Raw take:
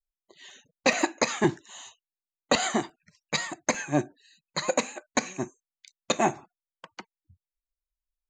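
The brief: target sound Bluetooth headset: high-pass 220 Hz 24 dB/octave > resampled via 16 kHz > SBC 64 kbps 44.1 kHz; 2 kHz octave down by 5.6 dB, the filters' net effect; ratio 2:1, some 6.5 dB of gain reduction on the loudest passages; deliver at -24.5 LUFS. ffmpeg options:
-af "equalizer=f=2000:t=o:g=-7,acompressor=threshold=0.0282:ratio=2,highpass=f=220:w=0.5412,highpass=f=220:w=1.3066,aresample=16000,aresample=44100,volume=3.55" -ar 44100 -c:a sbc -b:a 64k

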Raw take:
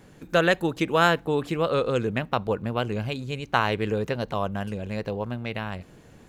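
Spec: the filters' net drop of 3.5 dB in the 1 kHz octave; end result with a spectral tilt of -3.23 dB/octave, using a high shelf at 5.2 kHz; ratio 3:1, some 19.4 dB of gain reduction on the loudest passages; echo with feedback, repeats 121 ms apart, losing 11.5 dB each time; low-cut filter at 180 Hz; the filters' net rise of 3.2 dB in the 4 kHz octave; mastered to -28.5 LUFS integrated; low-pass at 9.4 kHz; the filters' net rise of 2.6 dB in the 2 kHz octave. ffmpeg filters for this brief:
-af "highpass=180,lowpass=9400,equalizer=f=1000:t=o:g=-7,equalizer=f=2000:t=o:g=6,equalizer=f=4000:t=o:g=3.5,highshelf=f=5200:g=-3.5,acompressor=threshold=0.00708:ratio=3,aecho=1:1:121|242|363:0.266|0.0718|0.0194,volume=4.73"

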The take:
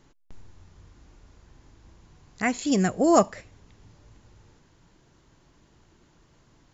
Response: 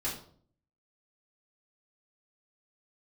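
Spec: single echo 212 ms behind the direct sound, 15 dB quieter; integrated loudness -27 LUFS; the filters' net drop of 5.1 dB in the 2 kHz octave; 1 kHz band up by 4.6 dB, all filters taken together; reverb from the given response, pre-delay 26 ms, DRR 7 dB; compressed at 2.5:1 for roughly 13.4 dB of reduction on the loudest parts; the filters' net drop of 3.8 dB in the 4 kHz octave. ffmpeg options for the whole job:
-filter_complex "[0:a]equalizer=f=1000:t=o:g=8.5,equalizer=f=2000:t=o:g=-8,equalizer=f=4000:t=o:g=-3.5,acompressor=threshold=0.0282:ratio=2.5,aecho=1:1:212:0.178,asplit=2[s0][s1];[1:a]atrim=start_sample=2205,adelay=26[s2];[s1][s2]afir=irnorm=-1:irlink=0,volume=0.266[s3];[s0][s3]amix=inputs=2:normalize=0,volume=1.58"

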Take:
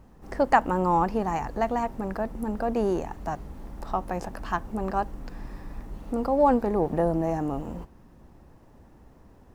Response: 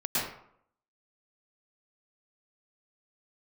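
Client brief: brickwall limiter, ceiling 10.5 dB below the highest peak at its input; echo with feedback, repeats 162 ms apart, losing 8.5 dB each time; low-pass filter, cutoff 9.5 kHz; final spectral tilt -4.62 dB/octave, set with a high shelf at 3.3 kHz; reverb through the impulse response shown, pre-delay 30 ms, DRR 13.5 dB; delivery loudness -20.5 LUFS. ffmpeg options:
-filter_complex "[0:a]lowpass=9500,highshelf=f=3300:g=-7,alimiter=limit=0.133:level=0:latency=1,aecho=1:1:162|324|486|648:0.376|0.143|0.0543|0.0206,asplit=2[s0][s1];[1:a]atrim=start_sample=2205,adelay=30[s2];[s1][s2]afir=irnorm=-1:irlink=0,volume=0.0708[s3];[s0][s3]amix=inputs=2:normalize=0,volume=2.66"

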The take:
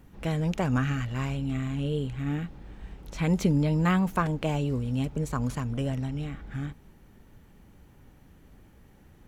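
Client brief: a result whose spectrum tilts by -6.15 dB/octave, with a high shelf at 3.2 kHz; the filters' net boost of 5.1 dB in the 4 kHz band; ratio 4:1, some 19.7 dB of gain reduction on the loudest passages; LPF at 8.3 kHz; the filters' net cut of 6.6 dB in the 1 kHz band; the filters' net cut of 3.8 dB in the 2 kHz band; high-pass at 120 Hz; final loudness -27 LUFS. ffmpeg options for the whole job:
-af "highpass=120,lowpass=8300,equalizer=f=1000:t=o:g=-8,equalizer=f=2000:t=o:g=-6,highshelf=f=3200:g=6.5,equalizer=f=4000:t=o:g=6,acompressor=threshold=0.00562:ratio=4,volume=8.41"

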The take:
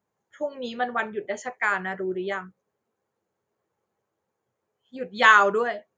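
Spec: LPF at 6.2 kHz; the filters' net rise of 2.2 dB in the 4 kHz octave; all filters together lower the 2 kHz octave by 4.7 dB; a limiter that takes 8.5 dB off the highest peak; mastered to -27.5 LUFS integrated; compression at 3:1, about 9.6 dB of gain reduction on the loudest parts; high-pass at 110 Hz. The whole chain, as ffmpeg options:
-af "highpass=110,lowpass=6200,equalizer=f=2000:t=o:g=-8,equalizer=f=4000:t=o:g=7,acompressor=threshold=0.0501:ratio=3,volume=1.88,alimiter=limit=0.158:level=0:latency=1"

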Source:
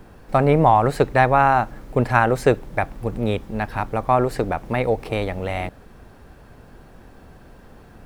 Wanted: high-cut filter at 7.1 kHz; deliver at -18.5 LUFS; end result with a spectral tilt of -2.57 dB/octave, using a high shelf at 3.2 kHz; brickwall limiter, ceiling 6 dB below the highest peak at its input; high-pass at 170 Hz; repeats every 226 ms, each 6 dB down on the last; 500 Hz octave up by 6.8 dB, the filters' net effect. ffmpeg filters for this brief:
-af "highpass=170,lowpass=7100,equalizer=f=500:t=o:g=8.5,highshelf=f=3200:g=-6,alimiter=limit=0.596:level=0:latency=1,aecho=1:1:226|452|678|904|1130|1356:0.501|0.251|0.125|0.0626|0.0313|0.0157,volume=0.841"

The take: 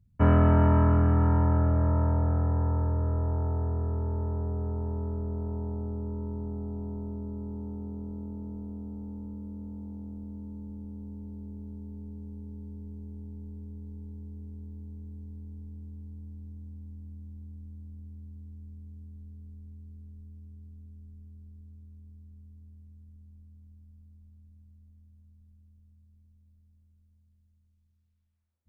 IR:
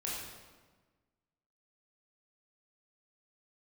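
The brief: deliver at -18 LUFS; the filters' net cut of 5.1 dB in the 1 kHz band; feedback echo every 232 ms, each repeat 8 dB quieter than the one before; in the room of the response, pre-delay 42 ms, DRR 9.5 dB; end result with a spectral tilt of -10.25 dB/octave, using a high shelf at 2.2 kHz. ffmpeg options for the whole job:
-filter_complex "[0:a]equalizer=f=1000:t=o:g=-5.5,highshelf=f=2200:g=-3.5,aecho=1:1:232|464|696|928|1160:0.398|0.159|0.0637|0.0255|0.0102,asplit=2[s0][s1];[1:a]atrim=start_sample=2205,adelay=42[s2];[s1][s2]afir=irnorm=-1:irlink=0,volume=0.251[s3];[s0][s3]amix=inputs=2:normalize=0,volume=2.11"

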